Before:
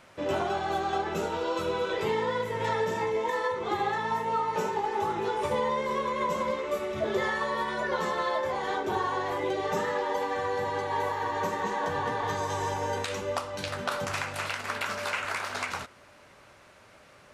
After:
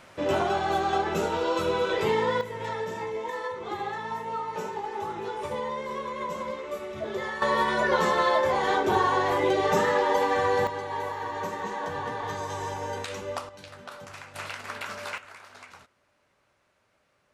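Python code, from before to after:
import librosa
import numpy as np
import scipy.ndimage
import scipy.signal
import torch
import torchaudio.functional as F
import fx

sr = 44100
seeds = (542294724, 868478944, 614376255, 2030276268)

y = fx.gain(x, sr, db=fx.steps((0.0, 3.5), (2.41, -4.0), (7.42, 6.0), (10.67, -2.5), (13.49, -11.5), (14.35, -4.0), (15.18, -15.0)))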